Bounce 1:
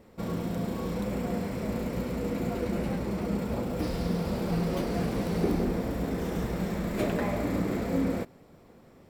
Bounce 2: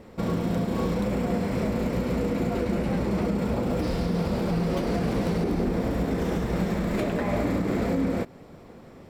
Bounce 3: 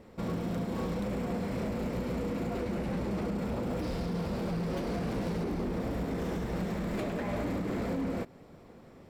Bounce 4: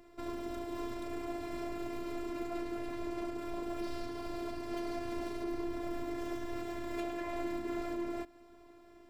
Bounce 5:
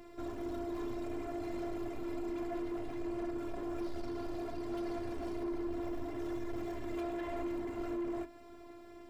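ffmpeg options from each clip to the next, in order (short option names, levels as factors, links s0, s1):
-af "highshelf=f=9800:g=-9.5,alimiter=level_in=1.12:limit=0.0631:level=0:latency=1:release=176,volume=0.891,volume=2.51"
-af "volume=13.3,asoftclip=hard,volume=0.075,volume=0.501"
-af "afftfilt=real='hypot(re,im)*cos(PI*b)':imag='0':win_size=512:overlap=0.75"
-af "asoftclip=type=tanh:threshold=0.0119,flanger=delay=8.6:depth=3.7:regen=-62:speed=0.62:shape=triangular,volume=2.82"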